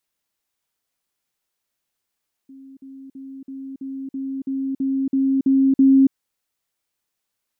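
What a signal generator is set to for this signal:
level staircase 269 Hz −39.5 dBFS, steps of 3 dB, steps 11, 0.28 s 0.05 s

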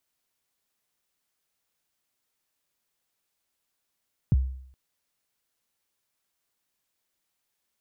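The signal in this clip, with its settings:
synth kick length 0.42 s, from 180 Hz, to 65 Hz, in 28 ms, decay 0.64 s, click off, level −14.5 dB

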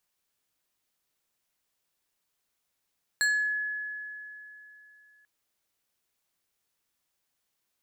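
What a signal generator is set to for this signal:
two-operator FM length 2.04 s, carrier 1,700 Hz, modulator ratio 3.49, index 0.95, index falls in 0.46 s exponential, decay 3.18 s, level −21 dB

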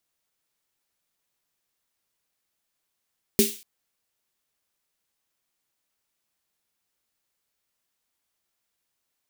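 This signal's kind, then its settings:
synth snare length 0.24 s, tones 220 Hz, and 400 Hz, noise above 2,400 Hz, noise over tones −3.5 dB, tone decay 0.22 s, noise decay 0.42 s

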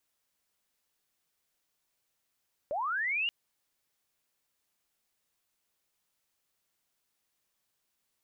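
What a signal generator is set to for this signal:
glide linear 540 Hz → 2,900 Hz −30 dBFS → −27.5 dBFS 0.58 s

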